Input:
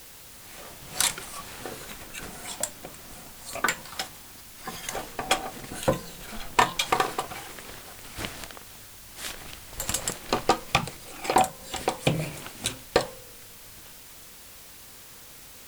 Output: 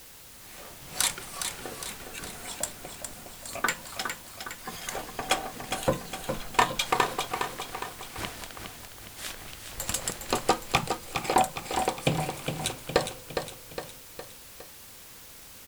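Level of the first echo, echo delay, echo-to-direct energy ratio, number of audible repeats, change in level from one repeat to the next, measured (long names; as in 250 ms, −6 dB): −7.0 dB, 411 ms, −5.5 dB, 4, −5.5 dB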